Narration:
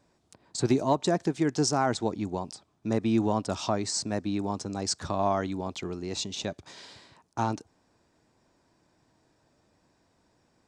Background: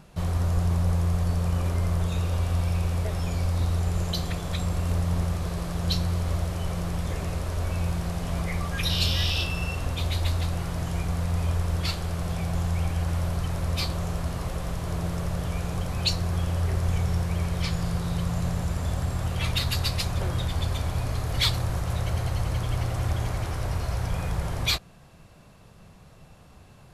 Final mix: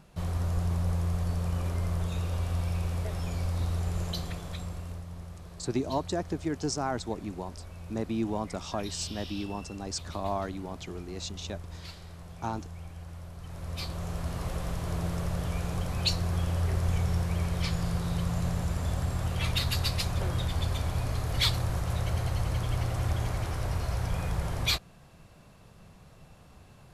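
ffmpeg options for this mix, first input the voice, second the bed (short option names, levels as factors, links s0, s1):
-filter_complex "[0:a]adelay=5050,volume=0.531[s0];[1:a]volume=2.82,afade=t=out:st=4.07:d=0.99:silence=0.266073,afade=t=in:st=13.37:d=1.14:silence=0.199526[s1];[s0][s1]amix=inputs=2:normalize=0"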